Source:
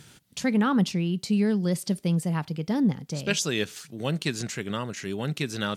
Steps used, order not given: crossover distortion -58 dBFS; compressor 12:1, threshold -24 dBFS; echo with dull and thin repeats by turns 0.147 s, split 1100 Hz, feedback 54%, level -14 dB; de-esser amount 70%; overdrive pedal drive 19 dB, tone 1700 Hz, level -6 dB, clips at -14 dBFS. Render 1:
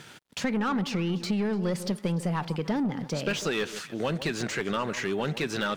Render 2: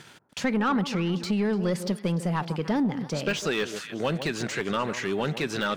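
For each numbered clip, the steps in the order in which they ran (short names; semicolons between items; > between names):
overdrive pedal > echo with dull and thin repeats by turns > crossover distortion > compressor > de-esser; crossover distortion > echo with dull and thin repeats by turns > compressor > overdrive pedal > de-esser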